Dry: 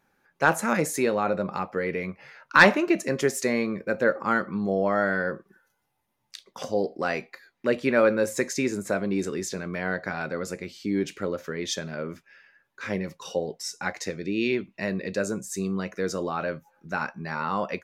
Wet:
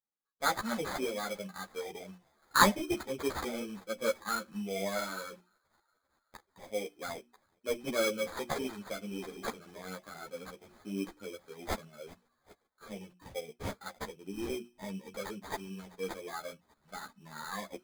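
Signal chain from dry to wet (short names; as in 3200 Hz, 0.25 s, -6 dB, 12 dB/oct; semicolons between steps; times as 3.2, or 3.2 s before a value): per-bin expansion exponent 1.5; HPF 170 Hz 12 dB/oct; bell 6200 Hz +10.5 dB 0.46 oct; notches 60/120/180/240/300/360 Hz; thin delay 0.392 s, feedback 68%, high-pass 3500 Hz, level -21 dB; sample-rate reducer 2800 Hz, jitter 0%; ensemble effect; gain -3.5 dB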